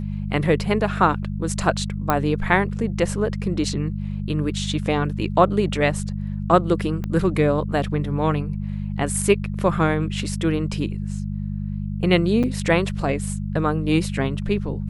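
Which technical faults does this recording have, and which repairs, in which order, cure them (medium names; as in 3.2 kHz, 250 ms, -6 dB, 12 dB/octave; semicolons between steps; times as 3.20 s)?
hum 50 Hz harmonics 4 -27 dBFS
2.10 s: pop -6 dBFS
7.04 s: pop -17 dBFS
12.43–12.44 s: dropout 7 ms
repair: de-click; de-hum 50 Hz, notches 4; interpolate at 12.43 s, 7 ms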